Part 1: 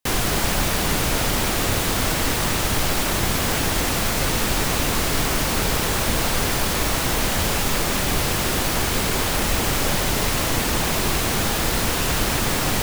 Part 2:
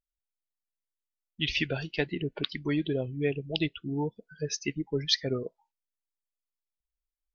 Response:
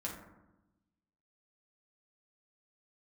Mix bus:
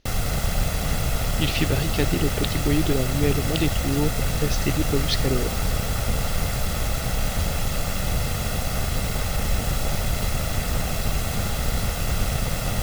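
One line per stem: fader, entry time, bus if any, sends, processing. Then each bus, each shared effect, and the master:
−6.5 dB, 0.00 s, no send, lower of the sound and its delayed copy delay 1.5 ms
−1.5 dB, 0.00 s, no send, compressor on every frequency bin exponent 0.6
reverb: not used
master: low-shelf EQ 330 Hz +9.5 dB

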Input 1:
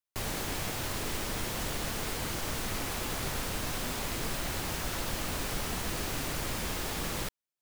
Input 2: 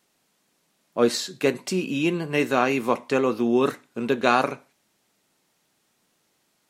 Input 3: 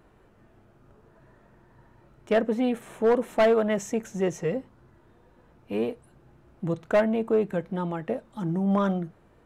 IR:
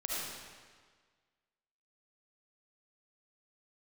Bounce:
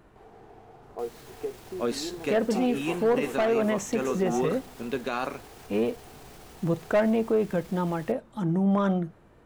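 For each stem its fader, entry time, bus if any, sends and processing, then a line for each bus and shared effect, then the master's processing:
+1.0 dB, 0.00 s, bus A, no send, echo send −10.5 dB, brickwall limiter −31.5 dBFS, peak gain reduction 10.5 dB
+0.5 dB, 0.00 s, bus A, no send, echo send −7.5 dB, no processing
+2.0 dB, 0.00 s, no bus, no send, no echo send, no processing
bus A: 0.0 dB, pair of resonant band-passes 570 Hz, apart 0.73 octaves; downward compressor 2.5 to 1, threshold −34 dBFS, peak gain reduction 10 dB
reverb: not used
echo: single-tap delay 831 ms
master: brickwall limiter −17 dBFS, peak gain reduction 9 dB

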